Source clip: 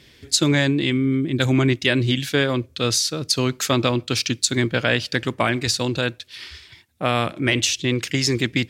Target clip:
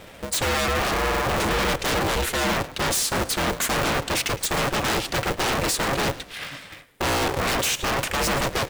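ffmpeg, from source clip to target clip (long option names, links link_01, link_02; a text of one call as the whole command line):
ffmpeg -i in.wav -filter_complex "[0:a]firequalizer=gain_entry='entry(100,0);entry(280,13);entry(4800,-6);entry(8200,7)':delay=0.05:min_phase=1,acontrast=80,aeval=exprs='0.266*(abs(mod(val(0)/0.266+3,4)-2)-1)':channel_layout=same,asplit=4[link_01][link_02][link_03][link_04];[link_02]adelay=110,afreqshift=-54,volume=-17.5dB[link_05];[link_03]adelay=220,afreqshift=-108,volume=-25dB[link_06];[link_04]adelay=330,afreqshift=-162,volume=-32.6dB[link_07];[link_01][link_05][link_06][link_07]amix=inputs=4:normalize=0,aeval=exprs='val(0)*sgn(sin(2*PI*210*n/s))':channel_layout=same,volume=-6.5dB" out.wav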